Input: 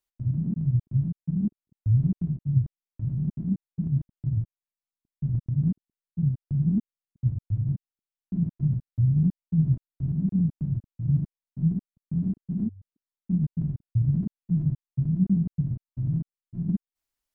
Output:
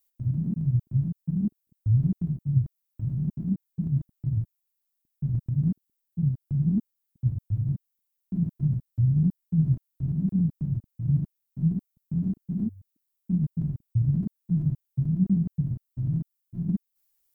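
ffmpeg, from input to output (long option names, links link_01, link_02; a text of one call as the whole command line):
ffmpeg -i in.wav -af "aemphasis=mode=production:type=50fm" out.wav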